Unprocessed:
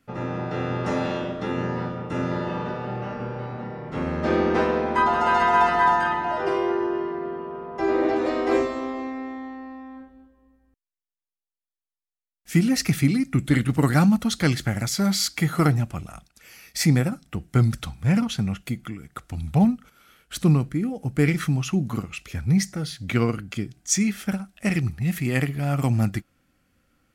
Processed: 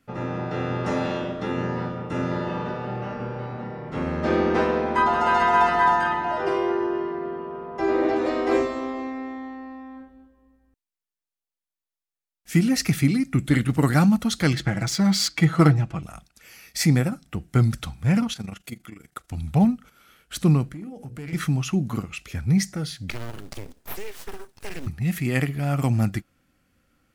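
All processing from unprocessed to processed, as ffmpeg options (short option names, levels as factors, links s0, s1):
-filter_complex "[0:a]asettb=1/sr,asplit=3[s0][s1][s2];[s0]atrim=end=14.534[s3];[s1]atrim=start=14.53:end=16.03,asetpts=PTS-STARTPTS,afade=t=in:d=0.004:c=qsin,afade=t=out:st=1.496:d=0.004:c=qsin,aecho=1:1:6.1:0.69,atrim=end_sample=66150,adynamicsmooth=sensitivity=3.5:basefreq=5000[s4];[s2]atrim=start=16.026[s5];[s3][s4]acrossfade=d=0.004:c1=hsin:c2=qsin[s6];[s6][s5]acrossfade=d=0.004:c1=qsin:c2=hsin,asettb=1/sr,asplit=3[s7][s8][s9];[s7]atrim=end=18.334[s10];[s8]atrim=start=18.33:end=19.31,asetpts=PTS-STARTPTS,afade=t=in:d=0.004:c=qsin,afade=t=out:st=0.976:d=0.004:c=qsin,bass=f=250:g=-8,treble=f=4000:g=4,tremolo=f=25:d=0.75[s11];[s9]atrim=start=19.306[s12];[s10][s11]acrossfade=d=0.004:c1=hsin:c2=qsin[s13];[s13][s12]acrossfade=d=0.004:c1=qsin:c2=hsin,asettb=1/sr,asplit=3[s14][s15][s16];[s14]atrim=end=20.724[s17];[s15]atrim=start=20.72:end=21.33,asetpts=PTS-STARTPTS,afade=t=in:d=0.004:c=qsin,afade=t=out:st=0.606:d=0.004:c=qsin,bandreject=f=60:t=h:w=6,bandreject=f=120:t=h:w=6,bandreject=f=180:t=h:w=6,bandreject=f=240:t=h:w=6,bandreject=f=300:t=h:w=6,bandreject=f=360:t=h:w=6,bandreject=f=420:t=h:w=6,bandreject=f=480:t=h:w=6,bandreject=f=540:t=h:w=6,acompressor=threshold=0.0158:ratio=3:attack=3.2:release=140:knee=1:detection=peak,asoftclip=type=hard:threshold=0.0316[s18];[s16]atrim=start=21.326[s19];[s17][s18]acrossfade=d=0.004:c1=hsin:c2=qsin[s20];[s20][s19]acrossfade=d=0.004:c1=qsin:c2=hsin,asettb=1/sr,asplit=3[s21][s22][s23];[s21]atrim=end=23.104[s24];[s22]atrim=start=23.1:end=24.87,asetpts=PTS-STARTPTS,afade=t=in:d=0.004:c=qsin,afade=t=out:st=1.766:d=0.004:c=qsin,aeval=exprs='abs(val(0))':c=same,acrusher=bits=5:mode=log:mix=0:aa=0.000001,acompressor=threshold=0.0316:ratio=3:attack=3.2:release=140:knee=1:detection=peak[s25];[s23]atrim=start=24.866[s26];[s24][s25]acrossfade=d=0.004:c1=hsin:c2=qsin[s27];[s27][s26]acrossfade=d=0.004:c1=qsin:c2=hsin"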